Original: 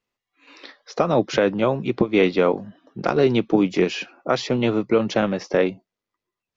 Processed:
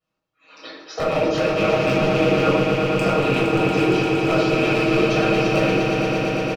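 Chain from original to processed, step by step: rattle on loud lows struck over -26 dBFS, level -10 dBFS; high-pass 63 Hz; treble shelf 3.9 kHz -7 dB; band-stop 2 kHz, Q 5.8; comb 6.3 ms, depth 99%; harmonic-percussive split harmonic -15 dB; compression 4:1, threshold -27 dBFS, peak gain reduction 13.5 dB; wavefolder -20.5 dBFS; echo with a slow build-up 116 ms, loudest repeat 5, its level -7.5 dB; reverberation RT60 0.80 s, pre-delay 12 ms, DRR -4.5 dB

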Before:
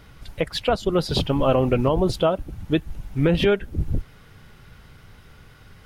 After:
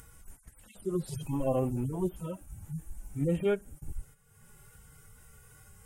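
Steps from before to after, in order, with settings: harmonic-percussive separation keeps harmonic; gate -40 dBFS, range -10 dB; resonant high shelf 5.9 kHz +13 dB, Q 3; upward compressor, threshold -34 dBFS; trim -8.5 dB

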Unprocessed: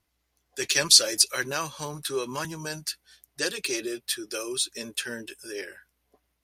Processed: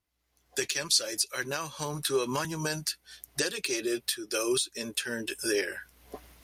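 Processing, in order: recorder AGC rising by 30 dB/s; trim -9 dB

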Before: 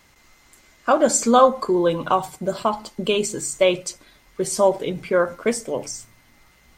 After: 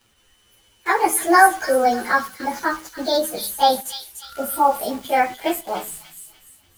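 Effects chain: frequency-domain pitch shifter +6.5 st; spectral replace 4.26–4.68 s, 1.2–8.1 kHz after; in parallel at -3.5 dB: word length cut 6-bit, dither none; on the sum: feedback echo behind a high-pass 294 ms, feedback 37%, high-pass 2.9 kHz, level -5.5 dB; trim -1 dB

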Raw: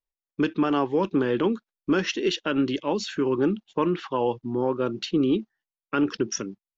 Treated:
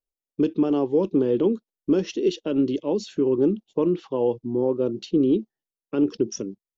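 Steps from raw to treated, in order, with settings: FFT filter 150 Hz 0 dB, 470 Hz +4 dB, 1.6 kHz -17 dB, 3 kHz -8 dB, 6 kHz -4 dB

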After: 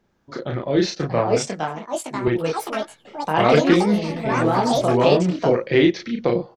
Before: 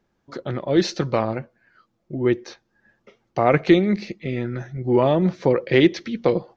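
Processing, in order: doubling 34 ms -3 dB; ever faster or slower copies 750 ms, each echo +5 st, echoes 3; in parallel at -2 dB: compression, threshold -29 dBFS, peak gain reduction 19.5 dB; 0.95–2.28 s: on the sum: three bands expanded up and down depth 100%; trim -3 dB

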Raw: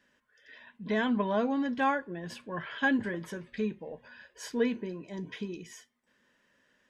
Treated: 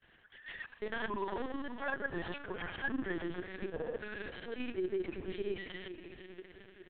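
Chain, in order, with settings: reverse; compression 5:1, threshold -41 dBFS, peak gain reduction 17 dB; reverse; peaking EQ 380 Hz +9.5 dB 0.31 oct; band-stop 610 Hz, Q 13; echo that smears into a reverb 453 ms, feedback 56%, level -10 dB; on a send at -18 dB: reverberation, pre-delay 3 ms; on the sum: AM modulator 23 Hz, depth 45%; granulator, pitch spread up and down by 0 st; LPC vocoder at 8 kHz pitch kept; bass shelf 490 Hz -9.5 dB; trim +13 dB

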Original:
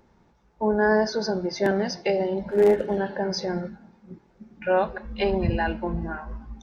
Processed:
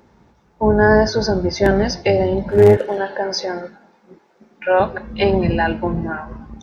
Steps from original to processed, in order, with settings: octave divider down 2 oct, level -1 dB; high-pass 64 Hz 12 dB/octave, from 2.77 s 430 Hz, from 4.80 s 86 Hz; trim +7.5 dB

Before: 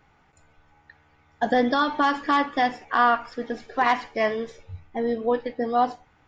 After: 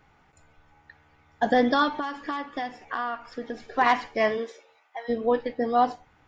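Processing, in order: 1.88–3.73 s: compression 4:1, threshold -30 dBFS, peak gain reduction 12 dB; 4.37–5.08 s: high-pass 220 Hz -> 890 Hz 24 dB/octave

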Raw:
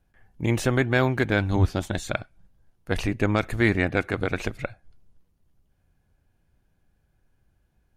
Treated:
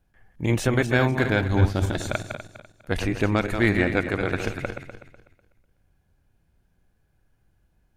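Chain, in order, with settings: backward echo that repeats 124 ms, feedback 53%, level -7 dB

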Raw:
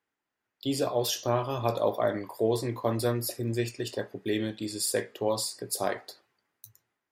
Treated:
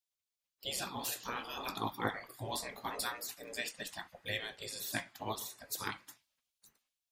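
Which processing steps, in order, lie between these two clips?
spectral gate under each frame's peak -15 dB weak; 3.03–3.76 s: bass shelf 190 Hz -9.5 dB; trim +1 dB

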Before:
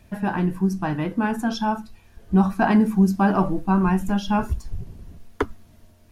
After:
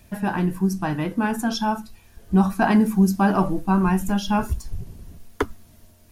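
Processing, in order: treble shelf 5.6 kHz +10 dB

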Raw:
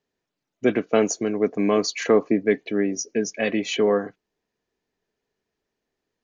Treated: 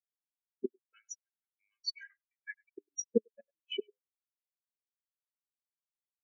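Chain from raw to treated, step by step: 0.93–2.78 s: Chebyshev high-pass 1.5 kHz, order 4; word length cut 6-bit, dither none; inverted gate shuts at -14 dBFS, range -28 dB; speakerphone echo 100 ms, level -7 dB; spectral contrast expander 4:1; trim -1.5 dB

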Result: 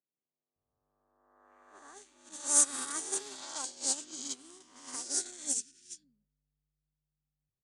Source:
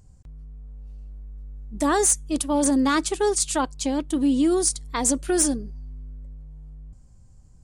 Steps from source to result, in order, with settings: reverse spectral sustain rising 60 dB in 2.12 s; peak limiter -10.5 dBFS, peak gain reduction 8 dB; wavefolder -14.5 dBFS; peaking EQ 140 Hz +9 dB 2.1 oct; feedback comb 390 Hz, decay 0.22 s, harmonics all, mix 60%; three bands offset in time mids, highs, lows 500/560 ms, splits 240/2200 Hz; level-controlled noise filter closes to 460 Hz, open at -21.5 dBFS; low-pass 8.2 kHz 24 dB/octave; tilt EQ +4.5 dB/octave; upward expansion 2.5:1, over -33 dBFS; trim -3.5 dB

